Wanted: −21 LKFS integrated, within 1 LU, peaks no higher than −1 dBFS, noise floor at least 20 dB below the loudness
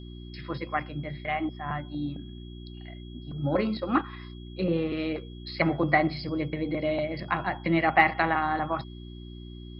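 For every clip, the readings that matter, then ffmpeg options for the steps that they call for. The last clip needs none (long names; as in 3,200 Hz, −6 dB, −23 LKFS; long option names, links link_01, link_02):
mains hum 60 Hz; hum harmonics up to 360 Hz; level of the hum −40 dBFS; interfering tone 3,300 Hz; level of the tone −53 dBFS; integrated loudness −28.0 LKFS; sample peak −5.5 dBFS; target loudness −21.0 LKFS
→ -af "bandreject=frequency=60:width_type=h:width=4,bandreject=frequency=120:width_type=h:width=4,bandreject=frequency=180:width_type=h:width=4,bandreject=frequency=240:width_type=h:width=4,bandreject=frequency=300:width_type=h:width=4,bandreject=frequency=360:width_type=h:width=4"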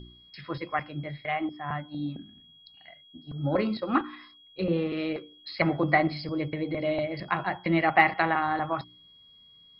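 mains hum none found; interfering tone 3,300 Hz; level of the tone −53 dBFS
→ -af "bandreject=frequency=3300:width=30"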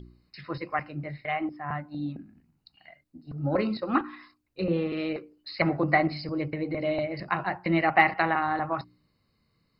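interfering tone none found; integrated loudness −28.5 LKFS; sample peak −5.5 dBFS; target loudness −21.0 LKFS
→ -af "volume=7.5dB,alimiter=limit=-1dB:level=0:latency=1"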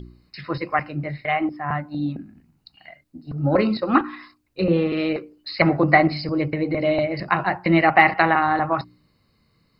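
integrated loudness −21.0 LKFS; sample peak −1.0 dBFS; background noise floor −66 dBFS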